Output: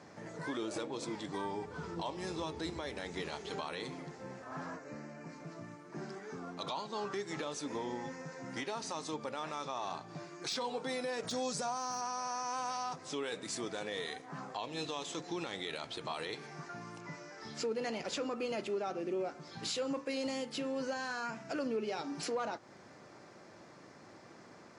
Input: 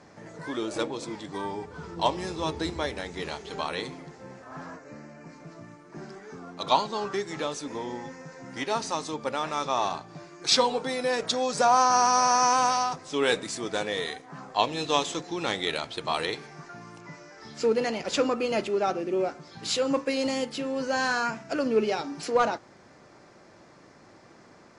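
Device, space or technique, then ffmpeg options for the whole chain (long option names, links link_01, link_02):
podcast mastering chain: -filter_complex "[0:a]asettb=1/sr,asplit=3[link_01][link_02][link_03];[link_01]atrim=end=11.234[link_04];[link_02]atrim=start=11.23:end=12.01,asetpts=PTS-STARTPTS,afade=type=in:duration=0.004:curve=qsin,afade=type=out:start_time=0.776:duration=0.004:curve=qsin,bass=frequency=250:gain=8,treble=frequency=4000:gain=8[link_05];[link_03]atrim=start=12.006[link_06];[link_04][link_05]acrossfade=duration=0.004:curve1=hsin:curve2=qsin[link_07];[link_07][link_06]acrossfade=duration=0.004:curve1=qsin:curve2=hsin,highpass=83,deesser=0.45,acompressor=threshold=-34dB:ratio=2.5,alimiter=level_in=2dB:limit=-24dB:level=0:latency=1:release=19,volume=-2dB,volume=-1.5dB" -ar 44100 -c:a libmp3lame -b:a 128k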